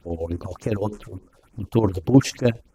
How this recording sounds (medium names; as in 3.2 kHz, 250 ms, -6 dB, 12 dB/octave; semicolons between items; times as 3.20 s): phasing stages 4, 3.4 Hz, lowest notch 200–4000 Hz; chopped level 9.8 Hz, depth 60%, duty 55%